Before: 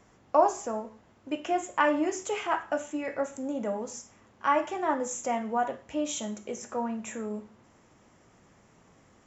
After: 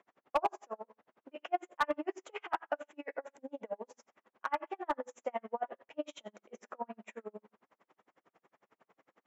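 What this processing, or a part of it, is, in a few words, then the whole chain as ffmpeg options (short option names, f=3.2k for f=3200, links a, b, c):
helicopter radio: -filter_complex "[0:a]highpass=400,lowpass=2.6k,aeval=exprs='val(0)*pow(10,-40*(0.5-0.5*cos(2*PI*11*n/s))/20)':c=same,asoftclip=type=hard:threshold=-21.5dB,asettb=1/sr,asplit=3[a][b][c];[a]atrim=end=2.964[d];[b]atrim=start=2.96:end=3.93,asetpts=PTS-STARTPTS,afade=t=in:d=0.004:c=qsin,afade=t=out:st=0.966:d=0.004:c=qsin,bandreject=f=1.3k:w=6.3[e];[c]atrim=start=3.926[f];[d][e]acrossfade=d=0.004:c1=hsin:c2=qsin[g];[g][f]acrossfade=d=0.004:c1=qsin:c2=hsin"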